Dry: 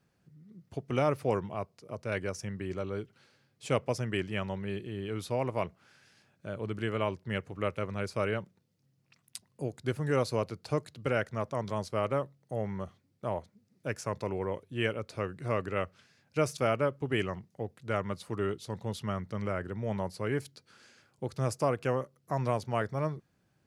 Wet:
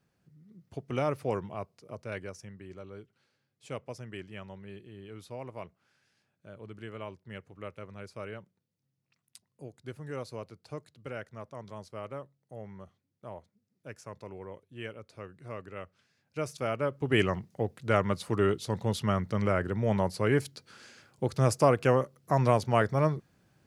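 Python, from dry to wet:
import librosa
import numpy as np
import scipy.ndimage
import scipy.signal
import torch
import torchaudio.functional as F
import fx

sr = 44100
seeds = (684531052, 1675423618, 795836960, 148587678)

y = fx.gain(x, sr, db=fx.line((1.9, -2.0), (2.58, -10.0), (15.79, -10.0), (16.77, -3.0), (17.21, 6.0)))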